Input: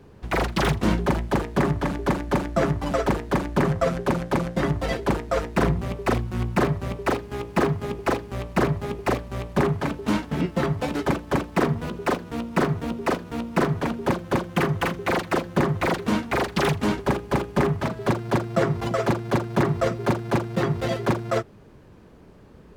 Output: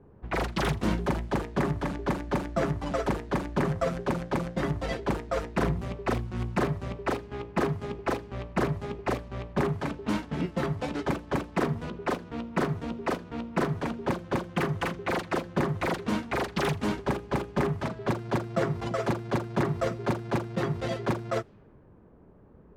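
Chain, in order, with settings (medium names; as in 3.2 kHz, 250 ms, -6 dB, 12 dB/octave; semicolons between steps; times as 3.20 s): level-controlled noise filter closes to 1.1 kHz, open at -19.5 dBFS; trim -5.5 dB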